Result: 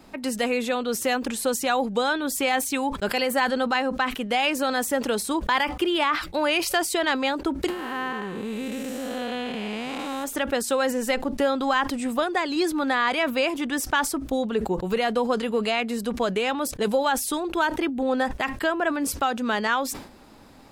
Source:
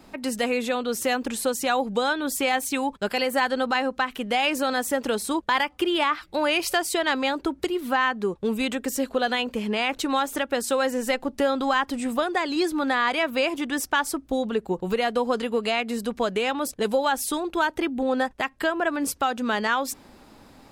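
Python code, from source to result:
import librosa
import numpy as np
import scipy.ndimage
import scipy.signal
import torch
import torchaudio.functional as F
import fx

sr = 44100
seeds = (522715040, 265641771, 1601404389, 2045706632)

y = fx.spec_blur(x, sr, span_ms=403.0, at=(7.68, 10.23), fade=0.02)
y = fx.sustainer(y, sr, db_per_s=100.0)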